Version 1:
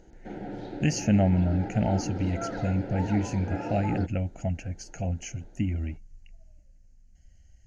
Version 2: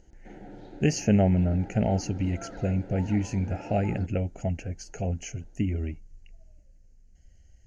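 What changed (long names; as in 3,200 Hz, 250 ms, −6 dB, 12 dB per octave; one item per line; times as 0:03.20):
speech: add parametric band 420 Hz +14.5 dB 0.34 octaves
background −8.0 dB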